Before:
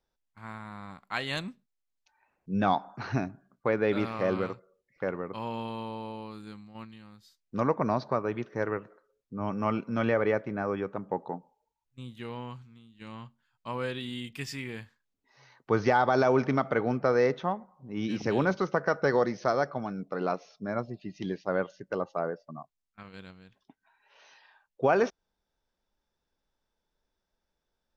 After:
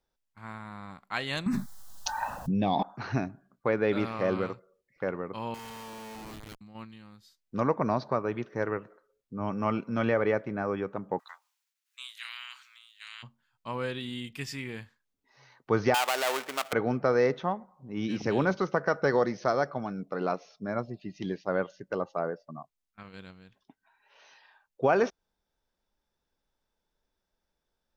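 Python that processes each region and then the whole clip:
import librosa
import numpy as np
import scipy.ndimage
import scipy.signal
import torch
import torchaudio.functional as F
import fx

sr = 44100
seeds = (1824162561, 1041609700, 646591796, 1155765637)

y = fx.chain(x, sr, fx.env_phaser(low_hz=380.0, high_hz=1400.0, full_db=-27.5),
    fx.env_flatten(amount_pct=100), at=(1.46, 2.83))
y = fx.chain(y, sr, fx.tilt_shelf(db=-9.5, hz=1300.0),
    fx.schmitt(flips_db=-45.0), at=(5.54, 6.61))
y = fx.spec_clip(y, sr, under_db=24, at=(11.18, 13.22), fade=0.02)
y = fx.highpass(y, sr, hz=1400.0, slope=24, at=(11.18, 13.22), fade=0.02)
y = fx.chain(y, sr, fx.dead_time(dead_ms=0.23),
    fx.highpass(hz=730.0, slope=12), at=(15.94, 16.73))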